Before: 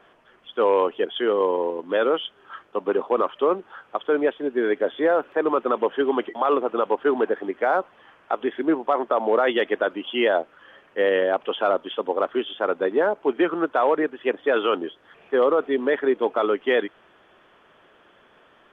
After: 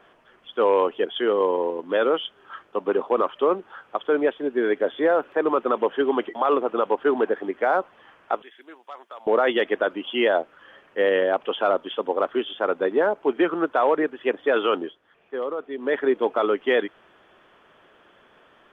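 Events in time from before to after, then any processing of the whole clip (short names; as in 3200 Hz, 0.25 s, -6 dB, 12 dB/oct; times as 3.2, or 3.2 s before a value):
8.42–9.27 differentiator
14.81–15.96 dip -9.5 dB, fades 0.18 s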